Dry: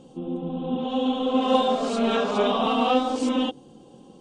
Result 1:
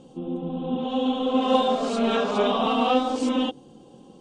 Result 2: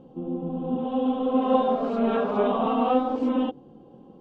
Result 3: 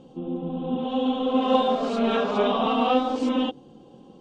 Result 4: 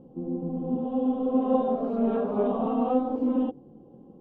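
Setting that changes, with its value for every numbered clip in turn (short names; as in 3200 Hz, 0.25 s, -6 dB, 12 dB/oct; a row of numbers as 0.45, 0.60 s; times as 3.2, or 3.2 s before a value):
Bessel low-pass, frequency: 12000, 1300, 3900, 520 Hz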